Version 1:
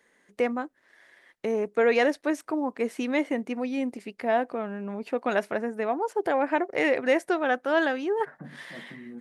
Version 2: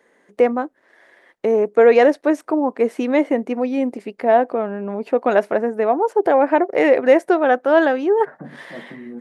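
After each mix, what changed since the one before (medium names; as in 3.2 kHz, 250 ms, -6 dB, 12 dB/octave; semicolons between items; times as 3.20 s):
master: add peaking EQ 520 Hz +11 dB 3 oct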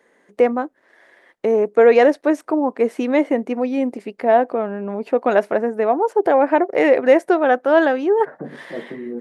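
second voice: add peaking EQ 420 Hz +13 dB 0.72 oct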